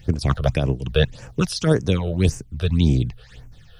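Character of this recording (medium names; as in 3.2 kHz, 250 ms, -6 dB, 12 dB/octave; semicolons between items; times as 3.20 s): a quantiser's noise floor 12-bit, dither none; phasing stages 8, 1.8 Hz, lowest notch 260–3800 Hz; random flutter of the level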